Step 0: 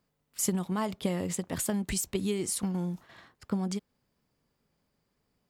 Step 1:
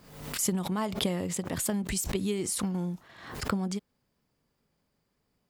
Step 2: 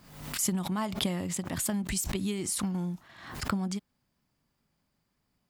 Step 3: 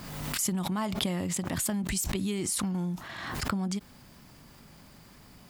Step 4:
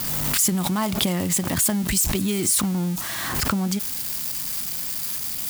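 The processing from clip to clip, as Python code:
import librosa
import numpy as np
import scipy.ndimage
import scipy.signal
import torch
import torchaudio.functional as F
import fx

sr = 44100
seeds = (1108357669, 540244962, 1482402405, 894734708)

y1 = fx.pre_swell(x, sr, db_per_s=70.0)
y2 = fx.peak_eq(y1, sr, hz=460.0, db=-8.5, octaves=0.54)
y3 = fx.env_flatten(y2, sr, amount_pct=50)
y3 = y3 * 10.0 ** (-1.5 / 20.0)
y4 = y3 + 0.5 * 10.0 ** (-27.5 / 20.0) * np.diff(np.sign(y3), prepend=np.sign(y3[:1]))
y4 = y4 * 10.0 ** (7.0 / 20.0)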